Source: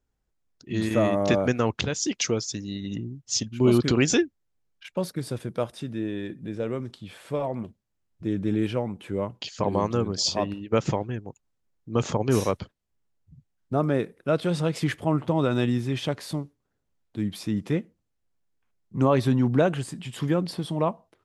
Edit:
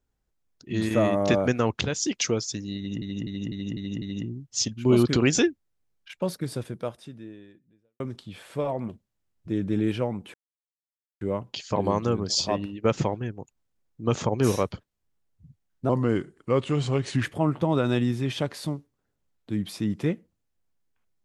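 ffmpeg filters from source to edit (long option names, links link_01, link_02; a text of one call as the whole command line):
ffmpeg -i in.wav -filter_complex "[0:a]asplit=10[link_01][link_02][link_03][link_04][link_05][link_06][link_07][link_08][link_09][link_10];[link_01]atrim=end=3.022[link_11];[link_02]atrim=start=2.768:end=3.022[link_12];[link_03]atrim=start=2.768:end=3.022[link_13];[link_04]atrim=start=2.768:end=3.022[link_14];[link_05]atrim=start=2.768:end=3.022[link_15];[link_06]atrim=start=2.768:end=6.75,asetpts=PTS-STARTPTS,afade=type=out:start_time=2.522:duration=1.46:curve=qua[link_16];[link_07]atrim=start=6.75:end=9.09,asetpts=PTS-STARTPTS,afade=type=in:duration=0.004:curve=hsin,afade=type=out:start_time=2.336:duration=0.004:curve=hsin,apad=pad_dur=0.87[link_17];[link_08]atrim=start=9.09:end=13.774,asetpts=PTS-STARTPTS,afade=type=in:duration=0.004:curve=hsin[link_18];[link_09]atrim=start=13.77:end=14.9,asetpts=PTS-STARTPTS,asetrate=37044,aresample=44100[link_19];[link_10]atrim=start=14.896[link_20];[link_11][link_12]acrossfade=duration=0.004:curve1=hsin:curve2=hsin[link_21];[link_21][link_13]acrossfade=duration=0.004:curve1=hsin:curve2=hsin[link_22];[link_22][link_14]acrossfade=duration=0.004:curve1=hsin:curve2=hsin[link_23];[link_23][link_15]acrossfade=duration=0.004:curve1=hsin:curve2=hsin[link_24];[link_16][link_17][link_18]concat=n=3:v=0:a=1[link_25];[link_24][link_25]acrossfade=duration=0.004:curve1=hsin:curve2=hsin[link_26];[link_26][link_19]acrossfade=duration=0.004:curve1=hsin:curve2=hsin[link_27];[link_27][link_20]acrossfade=duration=0.004:curve1=hsin:curve2=hsin" out.wav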